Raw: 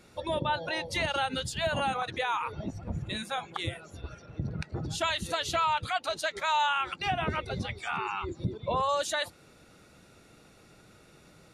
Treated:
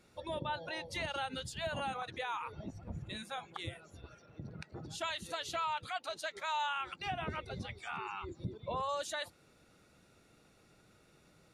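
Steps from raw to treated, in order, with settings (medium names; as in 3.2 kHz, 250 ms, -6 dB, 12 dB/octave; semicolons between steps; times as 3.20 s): 4.04–6.73 s: bass shelf 110 Hz -10.5 dB; trim -8.5 dB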